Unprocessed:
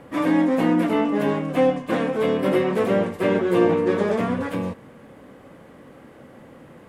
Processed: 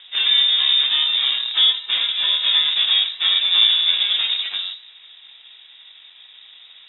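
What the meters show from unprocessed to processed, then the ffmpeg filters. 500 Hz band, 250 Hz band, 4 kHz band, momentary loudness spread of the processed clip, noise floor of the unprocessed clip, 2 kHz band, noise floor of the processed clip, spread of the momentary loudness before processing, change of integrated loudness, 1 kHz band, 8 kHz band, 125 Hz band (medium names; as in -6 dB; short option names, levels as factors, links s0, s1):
under -25 dB, under -35 dB, +28.5 dB, 6 LU, -47 dBFS, +3.5 dB, -46 dBFS, 6 LU, +6.0 dB, -11.0 dB, no reading, under -30 dB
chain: -filter_complex "[0:a]flanger=delay=9.6:depth=4.5:regen=-67:speed=0.31:shape=triangular,asplit=2[s0][s1];[s1]acrusher=bits=5:dc=4:mix=0:aa=0.000001,volume=0.355[s2];[s0][s2]amix=inputs=2:normalize=0,lowpass=f=3300:t=q:w=0.5098,lowpass=f=3300:t=q:w=0.6013,lowpass=f=3300:t=q:w=0.9,lowpass=f=3300:t=q:w=2.563,afreqshift=-3900,volume=1.5"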